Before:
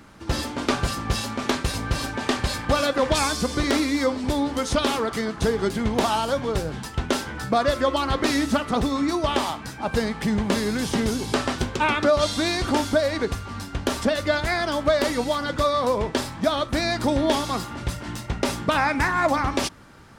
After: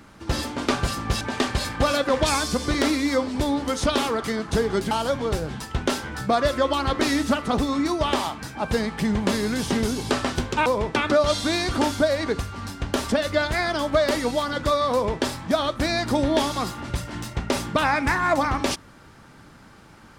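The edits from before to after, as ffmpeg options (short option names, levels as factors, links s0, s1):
-filter_complex "[0:a]asplit=5[s0][s1][s2][s3][s4];[s0]atrim=end=1.212[s5];[s1]atrim=start=2.098:end=5.802[s6];[s2]atrim=start=6.138:end=11.892[s7];[s3]atrim=start=15.858:end=16.162[s8];[s4]atrim=start=11.888[s9];[s5][s6]acrossfade=d=0.004:c1=hsin:c2=hsin[s10];[s10][s7]acrossfade=d=0.004:c1=hsin:c2=hsin[s11];[s11][s8]acrossfade=d=0.004:c1=hsin:c2=hsin[s12];[s12][s9]acrossfade=d=0.004:c1=hsin:c2=hsin"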